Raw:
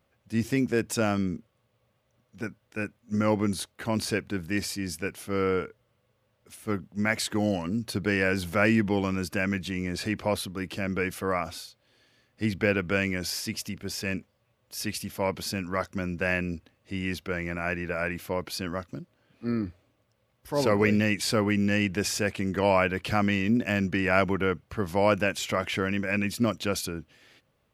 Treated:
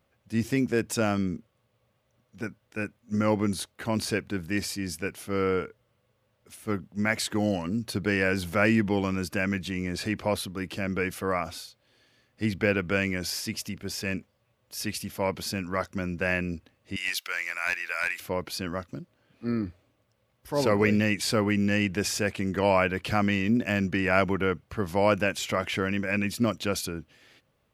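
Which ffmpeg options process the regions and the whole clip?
-filter_complex "[0:a]asettb=1/sr,asplit=3[a][b][c];[a]atrim=end=16.964[d];[b]atrim=start=16.96:end=18.2,asetpts=PTS-STARTPTS,afade=t=in:d=0.004:c=qsin,afade=t=out:st=1.236:d=0.004:c=qsin,highpass=1.1k,highshelf=f=2k:g=11.5,aeval=exprs='clip(val(0),-1,0.106)':c=same[e];[c]atrim=start=18.196[f];[d][e]acrossfade=d=0.004:c1=hsin:c2=qsin[g];[g][f]acrossfade=d=0.004:c1=qsin:c2=hsin"

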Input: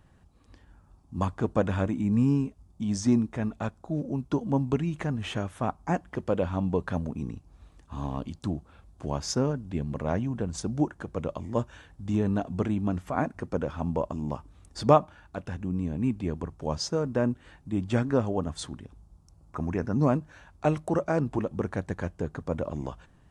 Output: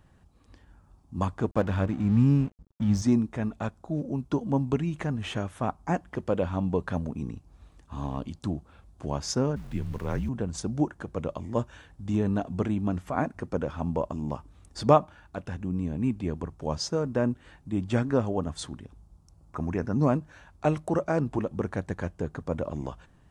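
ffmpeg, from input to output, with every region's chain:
-filter_complex "[0:a]asettb=1/sr,asplit=3[a][b][c];[a]atrim=end=1.514[d];[b]atrim=start=1.51:end=3.02,asetpts=PTS-STARTPTS,afade=t=in:d=0.004:c=qsin,afade=t=out:st=1.506:d=0.004:c=qsin,lowpass=6.1k,asubboost=boost=6.5:cutoff=210,aeval=exprs='sgn(val(0))*max(abs(val(0))-0.00708,0)':c=same[e];[c]atrim=start=3.016[f];[d][e]acrossfade=d=0.004:c1=hsin:c2=qsin[g];[g][f]acrossfade=d=0.004:c1=qsin:c2=hsin,asettb=1/sr,asplit=3[h][i][j];[h]atrim=end=9.564[k];[i]atrim=start=9.56:end=10.29,asetpts=PTS-STARTPTS,afade=t=in:d=0.004:c=qsin,afade=t=out:st=0.726:d=0.004:c=qsin,equalizer=f=700:w=2.4:g=-8,aeval=exprs='val(0)*gte(abs(val(0)),0.00473)':c=same,afreqshift=-55[l];[j]atrim=start=10.286[m];[k][l]acrossfade=d=0.004:c1=hsin:c2=qsin[n];[n][m]acrossfade=d=0.004:c1=qsin:c2=hsin"

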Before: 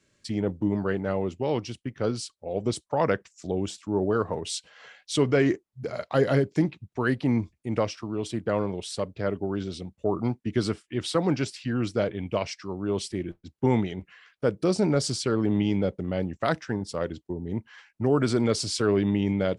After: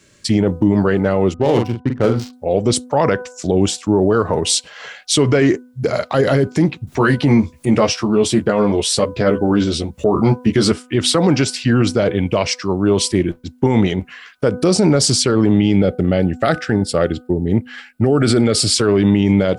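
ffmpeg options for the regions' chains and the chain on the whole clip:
-filter_complex "[0:a]asettb=1/sr,asplit=3[a][b][c];[a]atrim=end=1.344[d];[b]atrim=start=1.34:end=2.33,asetpts=PTS-STARTPTS,afade=t=in:d=0.004:c=qsin,afade=t=out:st=0.986:d=0.004:c=qsin,adynamicsmooth=sensitivity=5.5:basefreq=630,asplit=2[e][f];[f]adelay=43,volume=-6dB[g];[e][g]amix=inputs=2:normalize=0,atrim=end_sample=43659[h];[c]atrim=start=2.326[i];[d][h]acrossfade=d=0.004:c1=hsin:c2=qsin[j];[j][i]acrossfade=d=0.004:c1=qsin:c2=hsin,asettb=1/sr,asplit=3[k][l][m];[k]atrim=end=6.874[n];[l]atrim=start=6.87:end=10.72,asetpts=PTS-STARTPTS,afade=t=in:d=0.004:c=qsin,afade=t=out:st=3.846:d=0.004:c=qsin,asplit=2[o][p];[p]adelay=14,volume=-3.5dB[q];[o][q]amix=inputs=2:normalize=0,atrim=end_sample=169785,acompressor=mode=upward:threshold=-39dB:ratio=2.5:attack=3.2:release=140:knee=2.83:detection=peak[r];[m]atrim=start=10.716[s];[n][r]acrossfade=d=0.004:c1=hsin:c2=qsin[t];[t][s]acrossfade=d=0.004:c1=qsin:c2=hsin,asettb=1/sr,asplit=3[u][v][w];[u]atrim=end=15.544[x];[v]atrim=start=15.54:end=18.74,asetpts=PTS-STARTPTS,afade=t=in:d=0.004:c=qsin,afade=t=out:st=3.196:d=0.004:c=qsin,asuperstop=centerf=1000:order=4:qfactor=4.2,equalizer=f=6.1k:t=o:w=0.31:g=-9[y];[w]atrim=start=18.736[z];[x][y]acrossfade=d=0.004:c1=hsin:c2=qsin[aa];[aa][z]acrossfade=d=0.004:c1=qsin:c2=hsin,highshelf=f=6.9k:g=5,bandreject=f=249.1:t=h:w=4,bandreject=f=498.2:t=h:w=4,bandreject=f=747.3:t=h:w=4,bandreject=f=996.4:t=h:w=4,bandreject=f=1.2455k:t=h:w=4,bandreject=f=1.4946k:t=h:w=4,alimiter=level_in=19dB:limit=-1dB:release=50:level=0:latency=1,volume=-4dB"

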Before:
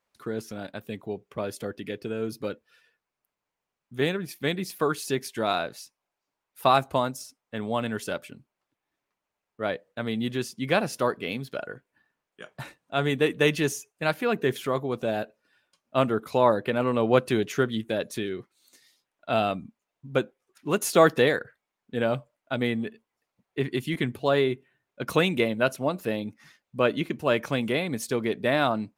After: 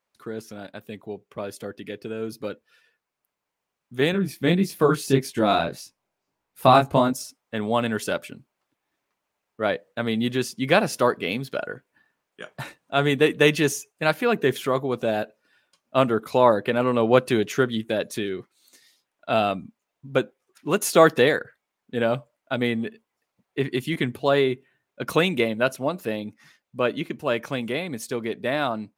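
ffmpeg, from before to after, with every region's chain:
-filter_complex "[0:a]asettb=1/sr,asplit=3[a][b][c];[a]atrim=end=4.124[d];[b]atrim=start=4.12:end=7.13,asetpts=PTS-STARTPTS,afade=t=in:d=0.004:c=qsin,afade=t=out:st=3.006:d=0.004:c=qsin,lowshelf=f=360:g=11,flanger=delay=19:depth=6.2:speed=1.7[e];[c]atrim=start=7.126[f];[d][e]acrossfade=d=0.004:c1=hsin:c2=qsin[g];[g][f]acrossfade=d=0.004:c1=qsin:c2=hsin,lowshelf=f=82:g=-6.5,dynaudnorm=f=230:g=31:m=11.5dB,volume=-1dB"

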